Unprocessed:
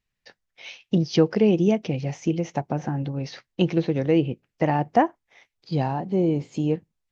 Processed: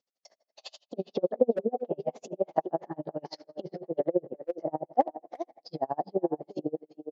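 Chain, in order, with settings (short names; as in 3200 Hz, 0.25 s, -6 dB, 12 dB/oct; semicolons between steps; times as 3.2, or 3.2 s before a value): gliding pitch shift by +3 st ending unshifted; treble ducked by the level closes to 640 Hz, closed at -18.5 dBFS; band shelf 2200 Hz -12 dB; in parallel at -1.5 dB: compressor 6:1, threshold -32 dBFS, peak gain reduction 15.5 dB; on the sum: treble ducked by the level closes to 2600 Hz, closed at -20.5 dBFS; speaker cabinet 490–5800 Hz, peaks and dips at 650 Hz +5 dB, 980 Hz -10 dB, 1700 Hz +3 dB, 2400 Hz -8 dB; speakerphone echo 0.38 s, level -9 dB; on a send at -21.5 dB: reverb RT60 1.9 s, pre-delay 6 ms; on the sum: dB-linear tremolo 12 Hz, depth 37 dB; gain +5 dB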